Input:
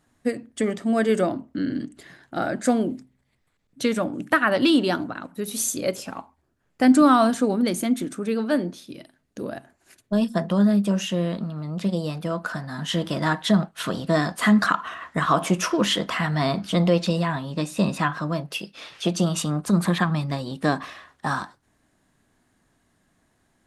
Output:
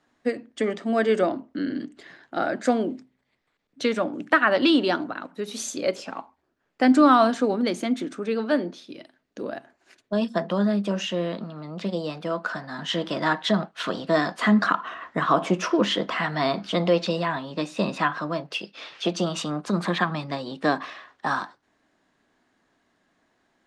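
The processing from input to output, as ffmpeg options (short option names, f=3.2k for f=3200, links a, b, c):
-filter_complex "[0:a]asettb=1/sr,asplit=3[a][b][c];[a]atrim=end=14.424[d];[b]atrim=start=14.42:end=16.18,asetpts=PTS-STARTPTS,afade=t=in:d=0.004:c=qsin,afade=t=out:st=1.756:d=0.004:c=qsin,tiltshelf=f=660:g=3.5[e];[c]atrim=start=16.176[f];[d][e]acrossfade=d=0.004:c1=hsin:c2=qsin[g];[g][f]acrossfade=d=0.004:c1=qsin:c2=hsin,acrossover=split=230 6300:gain=0.2 1 0.0631[h][i][j];[h][i][j]amix=inputs=3:normalize=0,volume=1dB"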